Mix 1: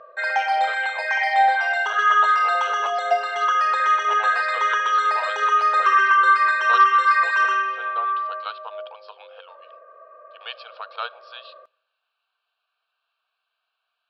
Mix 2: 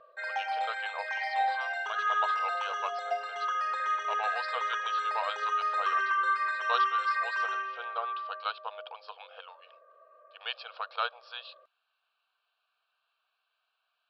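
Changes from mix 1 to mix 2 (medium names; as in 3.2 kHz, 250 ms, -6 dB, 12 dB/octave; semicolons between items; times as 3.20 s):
background -11.0 dB; reverb: off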